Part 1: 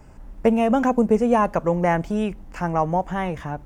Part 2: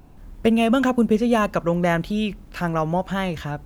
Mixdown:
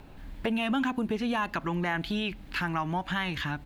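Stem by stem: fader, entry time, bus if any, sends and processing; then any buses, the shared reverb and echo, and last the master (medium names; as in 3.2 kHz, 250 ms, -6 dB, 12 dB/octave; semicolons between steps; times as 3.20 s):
-3.0 dB, 0.00 s, no send, Chebyshev band-pass 270–1700 Hz, order 5
-2.0 dB, 0.3 ms, no send, high-order bell 2.7 kHz +9 dB; peak limiter -13.5 dBFS, peak gain reduction 9.5 dB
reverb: none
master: compression 2:1, threshold -31 dBFS, peak gain reduction 8 dB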